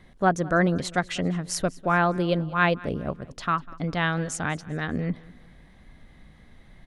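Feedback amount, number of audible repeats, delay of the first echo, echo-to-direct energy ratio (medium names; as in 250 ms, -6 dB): 41%, 2, 198 ms, -20.5 dB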